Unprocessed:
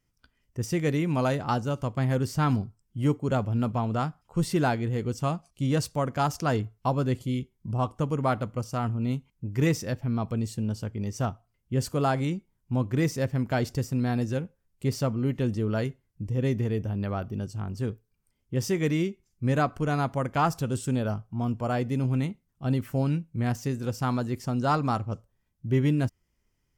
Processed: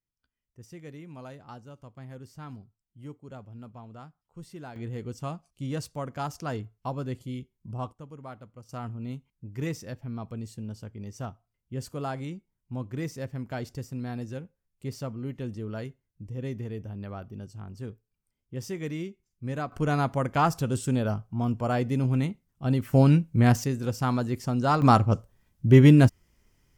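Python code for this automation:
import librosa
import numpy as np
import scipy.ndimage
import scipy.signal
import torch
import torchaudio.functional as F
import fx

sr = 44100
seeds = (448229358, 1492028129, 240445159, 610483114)

y = fx.gain(x, sr, db=fx.steps((0.0, -18.0), (4.76, -7.0), (7.93, -17.0), (8.69, -8.0), (19.72, 1.0), (22.93, 7.5), (23.64, 1.0), (24.82, 9.0)))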